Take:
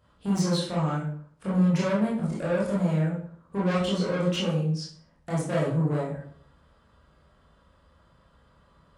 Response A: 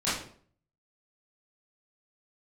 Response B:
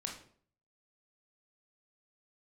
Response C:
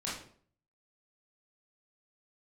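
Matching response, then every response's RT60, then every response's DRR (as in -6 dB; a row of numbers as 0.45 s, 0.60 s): C; 0.55 s, 0.55 s, 0.55 s; -12.5 dB, 0.5 dB, -7.5 dB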